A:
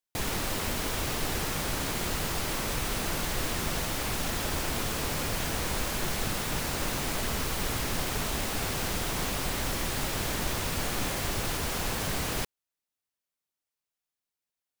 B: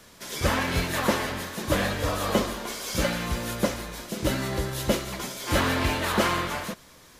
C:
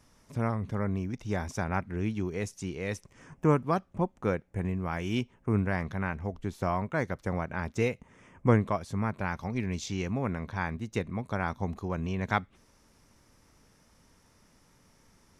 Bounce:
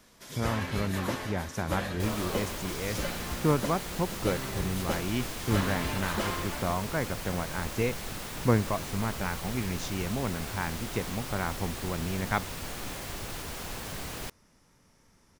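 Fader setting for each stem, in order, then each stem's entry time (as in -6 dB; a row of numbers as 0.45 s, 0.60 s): -7.0 dB, -9.0 dB, -1.0 dB; 1.85 s, 0.00 s, 0.00 s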